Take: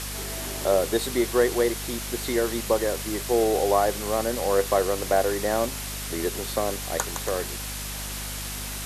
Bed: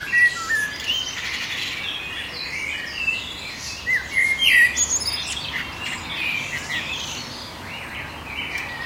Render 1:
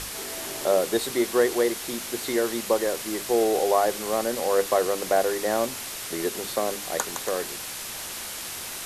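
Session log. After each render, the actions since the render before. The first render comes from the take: hum notches 50/100/150/200/250/300 Hz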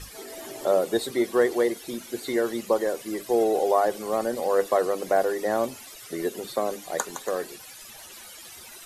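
noise reduction 15 dB, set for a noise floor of -35 dBFS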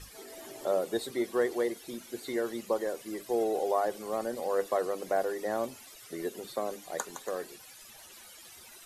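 trim -7 dB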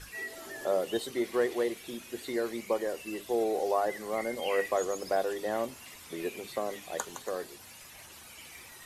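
add bed -24 dB

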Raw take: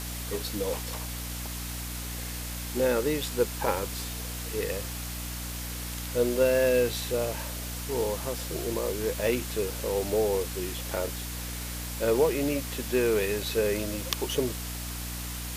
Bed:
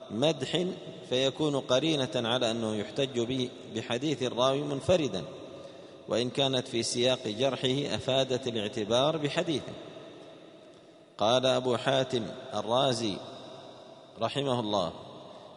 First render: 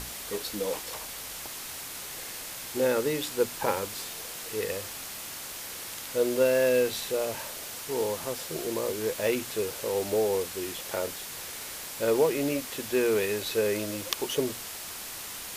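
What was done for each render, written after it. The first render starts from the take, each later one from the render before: hum notches 60/120/180/240/300 Hz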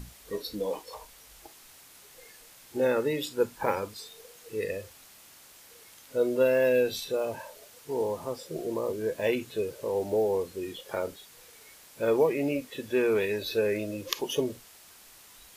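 noise print and reduce 14 dB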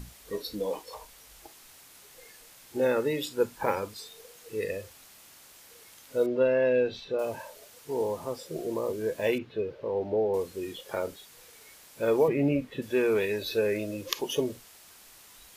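6.26–7.19 s: distance through air 230 m; 9.38–10.34 s: distance through air 300 m; 12.28–12.82 s: tone controls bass +10 dB, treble -12 dB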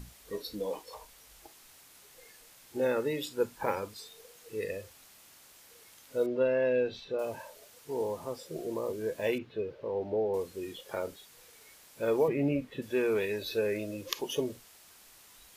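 trim -3.5 dB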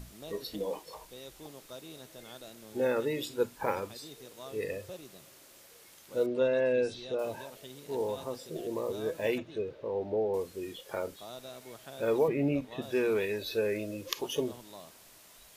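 add bed -20.5 dB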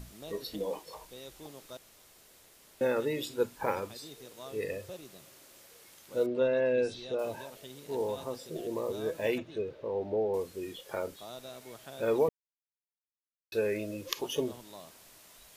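1.77–2.81 s: room tone; 6.27–6.78 s: distance through air 72 m; 12.29–13.52 s: mute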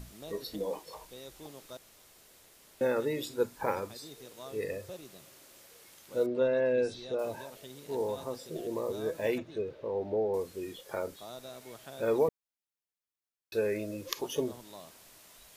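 dynamic bell 2.9 kHz, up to -5 dB, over -57 dBFS, Q 2.8

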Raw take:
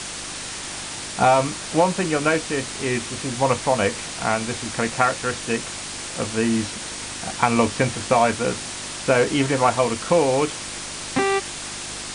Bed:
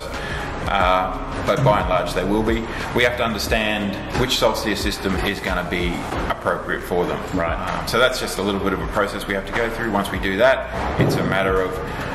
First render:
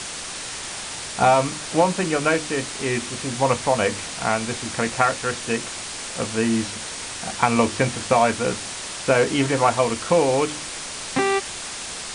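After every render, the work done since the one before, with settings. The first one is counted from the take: de-hum 50 Hz, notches 7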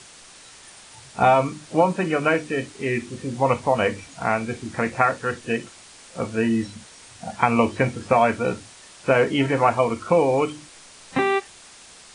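noise print and reduce 14 dB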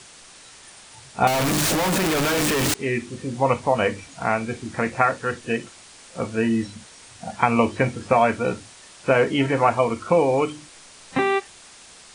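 1.27–2.74 s: one-bit comparator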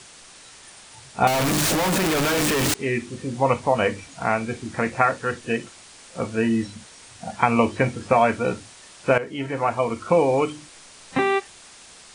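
9.18–10.14 s: fade in, from -14 dB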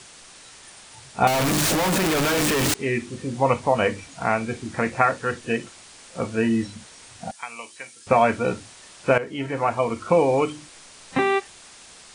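7.31–8.07 s: differentiator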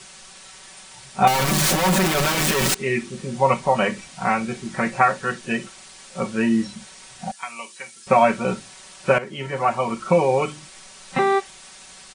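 peaking EQ 360 Hz -3.5 dB 0.73 oct; comb 5.3 ms, depth 88%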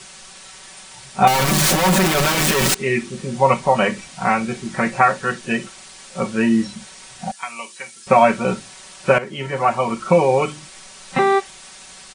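trim +3 dB; peak limiter -1 dBFS, peak gain reduction 1 dB

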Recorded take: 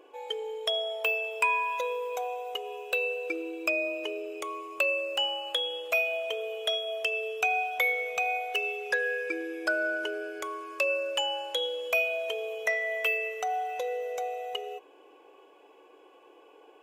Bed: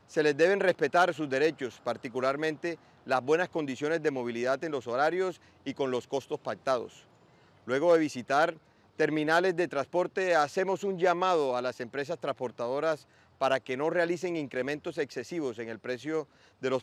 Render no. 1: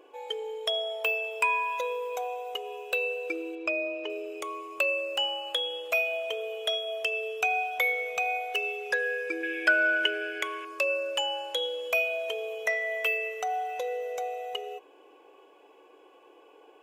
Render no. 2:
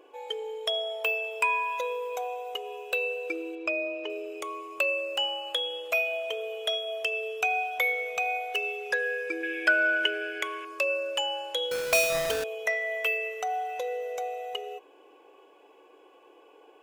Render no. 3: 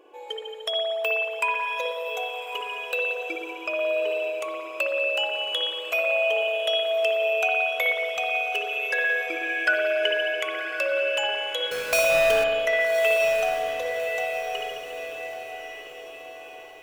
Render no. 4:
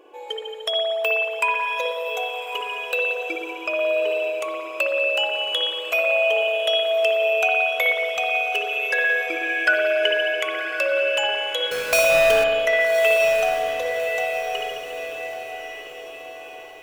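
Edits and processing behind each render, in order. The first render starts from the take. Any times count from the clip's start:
3.55–4.10 s: distance through air 140 m; 9.43–10.65 s: high-order bell 2.3 kHz +12.5 dB 1.3 oct
11.71–12.44 s: square wave that keeps the level
echo that smears into a reverb 1190 ms, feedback 46%, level -8 dB; spring tank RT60 1.7 s, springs 56 ms, chirp 40 ms, DRR -0.5 dB
trim +3.5 dB

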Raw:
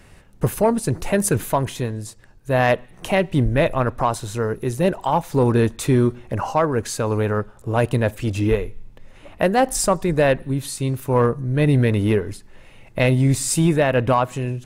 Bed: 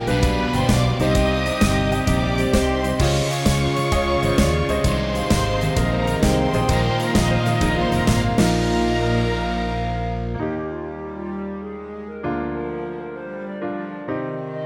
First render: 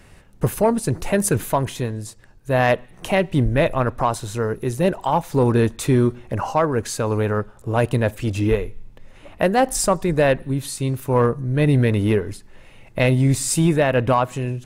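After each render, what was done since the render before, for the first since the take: no audible change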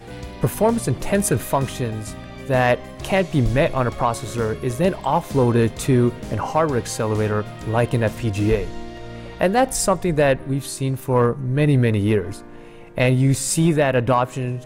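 add bed -16 dB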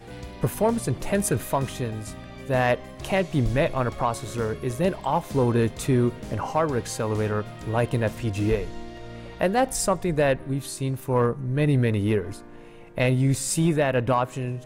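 trim -4.5 dB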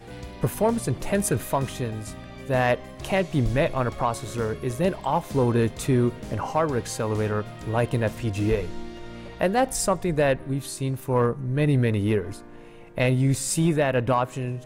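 8.56–9.28 s: doubling 12 ms -4.5 dB

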